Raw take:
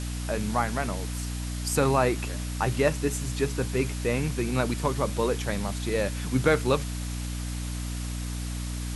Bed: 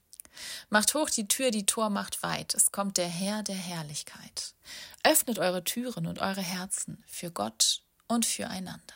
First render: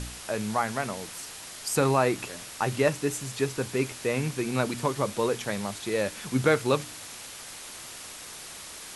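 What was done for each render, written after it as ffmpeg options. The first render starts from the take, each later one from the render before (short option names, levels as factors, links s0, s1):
-af "bandreject=f=60:t=h:w=4,bandreject=f=120:t=h:w=4,bandreject=f=180:t=h:w=4,bandreject=f=240:t=h:w=4,bandreject=f=300:t=h:w=4"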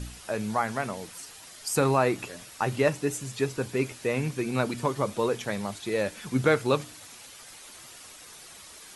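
-af "afftdn=nr=8:nf=-43"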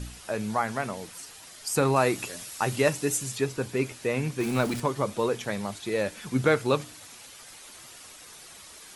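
-filter_complex "[0:a]asettb=1/sr,asplit=3[s0][s1][s2];[s0]atrim=end=1.964[s3];[s1]atrim=start=1.96:end=3.38,asetpts=PTS-STARTPTS,afade=t=in:d=0.004:c=qsin,afade=t=out:st=1.416:d=0.004:c=qsin,highshelf=f=4000:g=9[s4];[s2]atrim=start=3.376[s5];[s3][s4]acrossfade=d=0.004:c1=hsin:c2=qsin[s6];[s6][s5]acrossfade=d=0.004:c1=qsin:c2=hsin,asettb=1/sr,asplit=3[s7][s8][s9];[s7]atrim=end=4.404[s10];[s8]atrim=start=4.4:end=4.8,asetpts=PTS-STARTPTS,afade=t=in:d=0.004:c=qsin,afade=t=out:st=0.396:d=0.004:c=qsin,aeval=exprs='val(0)+0.5*0.0237*sgn(val(0))':c=same[s11];[s9]atrim=start=4.796[s12];[s10][s11]acrossfade=d=0.004:c1=hsin:c2=qsin[s13];[s13][s12]acrossfade=d=0.004:c1=qsin:c2=hsin"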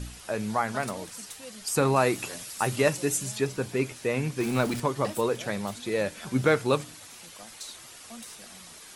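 -filter_complex "[1:a]volume=0.133[s0];[0:a][s0]amix=inputs=2:normalize=0"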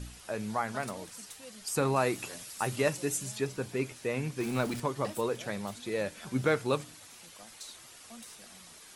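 -af "volume=0.562"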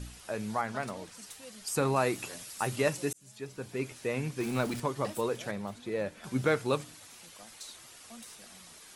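-filter_complex "[0:a]asettb=1/sr,asplit=3[s0][s1][s2];[s0]atrim=end=0.614[s3];[s1]atrim=start=0.61:end=1.22,asetpts=PTS-STARTPTS,afade=t=in:d=0.004:c=qsin,afade=t=out:st=0.606:d=0.004:c=qsin,highshelf=f=9000:g=-10.5[s4];[s2]atrim=start=1.216[s5];[s3][s4]acrossfade=d=0.004:c1=hsin:c2=qsin[s6];[s6][s5]acrossfade=d=0.004:c1=qsin:c2=hsin,asettb=1/sr,asplit=3[s7][s8][s9];[s7]atrim=end=5.514[s10];[s8]atrim=start=5.51:end=6.24,asetpts=PTS-STARTPTS,afade=t=in:d=0.004:c=qsin,afade=t=out:st=0.726:d=0.004:c=qsin,highshelf=f=2700:g=-9.5[s11];[s9]atrim=start=6.236[s12];[s10][s11]acrossfade=d=0.004:c1=hsin:c2=qsin[s13];[s13][s12]acrossfade=d=0.004:c1=qsin:c2=hsin,asplit=2[s14][s15];[s14]atrim=end=3.13,asetpts=PTS-STARTPTS,afade=t=out:st=3.126:d=0.004:c=hsin[s16];[s15]atrim=start=3.13,asetpts=PTS-STARTPTS,afade=t=in:d=0.85[s17];[s16][s17]concat=n=2:v=0:a=1"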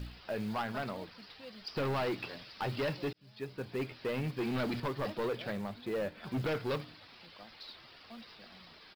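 -af "aresample=11025,asoftclip=type=hard:threshold=0.0299,aresample=44100,acrusher=bits=6:mode=log:mix=0:aa=0.000001"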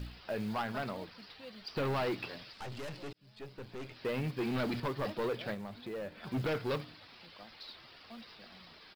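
-filter_complex "[0:a]asettb=1/sr,asplit=3[s0][s1][s2];[s0]atrim=end=1.334[s3];[s1]atrim=start=1.33:end=1.88,asetpts=PTS-STARTPTS,afade=t=in:d=0.004:c=qsin,afade=t=out:st=0.546:d=0.004:c=qsin,bandreject=f=5100:w=12[s4];[s2]atrim=start=1.876[s5];[s3][s4]acrossfade=d=0.004:c1=hsin:c2=qsin[s6];[s6][s5]acrossfade=d=0.004:c1=qsin:c2=hsin,asettb=1/sr,asplit=3[s7][s8][s9];[s7]atrim=end=2.534[s10];[s8]atrim=start=2.53:end=3.96,asetpts=PTS-STARTPTS,afade=t=in:d=0.004:c=qsin,afade=t=out:st=1.426:d=0.004:c=qsin,aeval=exprs='(tanh(112*val(0)+0.55)-tanh(0.55))/112':c=same[s11];[s9]atrim=start=3.956[s12];[s10][s11]acrossfade=d=0.004:c1=hsin:c2=qsin[s13];[s13][s12]acrossfade=d=0.004:c1=qsin:c2=hsin,asettb=1/sr,asplit=3[s14][s15][s16];[s14]atrim=end=5.544[s17];[s15]atrim=start=5.54:end=6.27,asetpts=PTS-STARTPTS,afade=t=in:d=0.004:c=qsin,afade=t=out:st=0.726:d=0.004:c=qsin,acompressor=threshold=0.01:ratio=2.5:attack=3.2:release=140:knee=1:detection=peak[s18];[s16]atrim=start=6.266[s19];[s17][s18]acrossfade=d=0.004:c1=hsin:c2=qsin[s20];[s20][s19]acrossfade=d=0.004:c1=qsin:c2=hsin"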